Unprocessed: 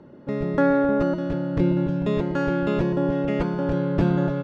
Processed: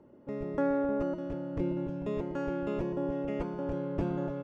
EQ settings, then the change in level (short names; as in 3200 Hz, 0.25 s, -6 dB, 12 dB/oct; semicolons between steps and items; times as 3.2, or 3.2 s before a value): fifteen-band EQ 160 Hz -7 dB, 1600 Hz -6 dB, 4000 Hz -10 dB; -8.5 dB